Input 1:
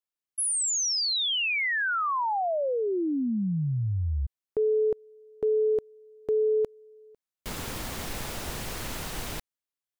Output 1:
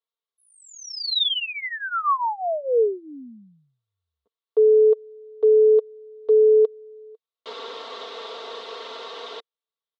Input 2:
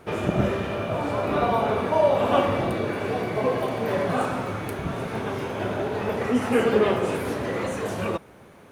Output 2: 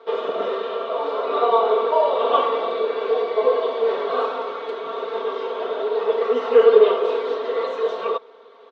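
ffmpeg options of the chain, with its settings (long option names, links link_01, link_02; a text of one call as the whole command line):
ffmpeg -i in.wav -af "highpass=frequency=410:width=0.5412,highpass=frequency=410:width=1.3066,equalizer=frequency=450:width_type=q:width=4:gain=8,equalizer=frequency=790:width_type=q:width=4:gain=-4,equalizer=frequency=1100:width_type=q:width=4:gain=6,equalizer=frequency=1700:width_type=q:width=4:gain=-7,equalizer=frequency=2400:width_type=q:width=4:gain=-8,equalizer=frequency=3700:width_type=q:width=4:gain=7,lowpass=frequency=4100:width=0.5412,lowpass=frequency=4100:width=1.3066,aecho=1:1:4.4:0.79" out.wav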